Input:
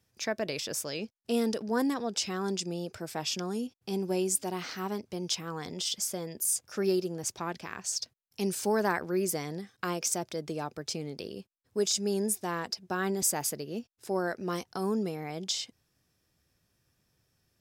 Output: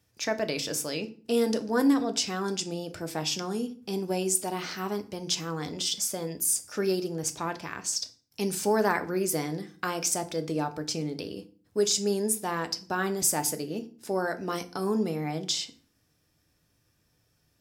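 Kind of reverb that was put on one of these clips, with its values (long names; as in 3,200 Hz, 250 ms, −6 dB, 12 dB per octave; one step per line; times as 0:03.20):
feedback delay network reverb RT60 0.42 s, low-frequency decay 1.45×, high-frequency decay 0.8×, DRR 7.5 dB
level +2.5 dB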